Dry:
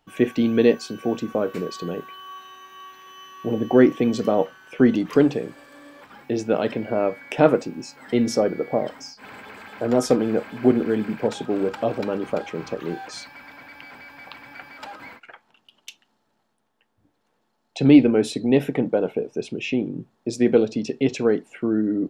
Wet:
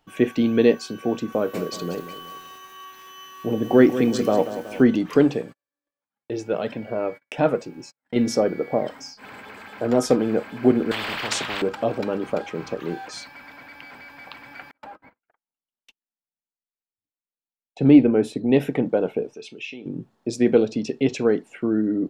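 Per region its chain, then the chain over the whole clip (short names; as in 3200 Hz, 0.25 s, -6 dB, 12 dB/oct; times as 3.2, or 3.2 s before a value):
1.32–4.83 high shelf 6000 Hz +8.5 dB + lo-fi delay 0.186 s, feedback 55%, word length 7-bit, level -11.5 dB
5.42–8.16 gate -40 dBFS, range -44 dB + flange 1.5 Hz, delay 1.1 ms, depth 1.3 ms, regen -52%
10.91–11.62 three-band isolator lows -15 dB, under 260 Hz, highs -14 dB, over 3600 Hz + spectral compressor 10:1
14.71–18.49 gate -40 dBFS, range -37 dB + bell 5200 Hz -8.5 dB 2.4 oct + mismatched tape noise reduction decoder only
19.34–19.86 weighting filter D + compressor 2:1, threshold -29 dBFS + resonator 440 Hz, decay 0.15 s, mix 70%
whole clip: dry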